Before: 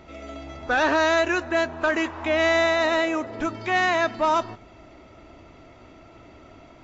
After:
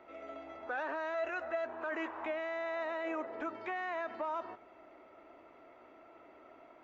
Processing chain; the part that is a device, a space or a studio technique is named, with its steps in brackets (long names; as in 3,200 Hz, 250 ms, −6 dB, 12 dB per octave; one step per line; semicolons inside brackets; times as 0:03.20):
DJ mixer with the lows and highs turned down (three-way crossover with the lows and the highs turned down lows −23 dB, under 310 Hz, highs −18 dB, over 2,400 Hz; brickwall limiter −23 dBFS, peak gain reduction 11.5 dB)
0:01.14–0:01.65: comb filter 1.5 ms, depth 54%
level −6 dB